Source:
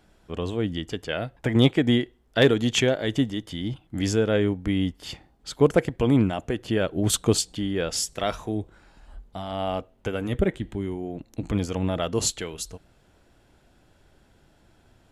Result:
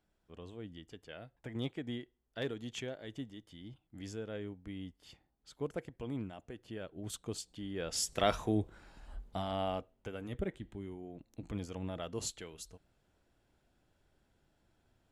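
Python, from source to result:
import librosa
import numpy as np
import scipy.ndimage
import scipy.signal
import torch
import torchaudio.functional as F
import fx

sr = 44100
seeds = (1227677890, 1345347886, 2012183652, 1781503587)

y = fx.gain(x, sr, db=fx.line((7.31, -20.0), (7.84, -12.0), (8.17, -3.0), (9.39, -3.0), (10.07, -14.5)))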